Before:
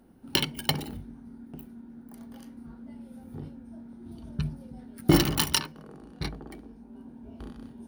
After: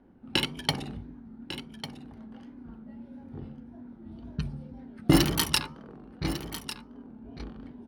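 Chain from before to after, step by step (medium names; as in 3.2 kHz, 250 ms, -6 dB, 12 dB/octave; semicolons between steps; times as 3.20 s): level-controlled noise filter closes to 2.4 kHz, open at -22 dBFS; de-hum 76.23 Hz, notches 17; wow and flutter 92 cents; on a send: delay 1149 ms -12 dB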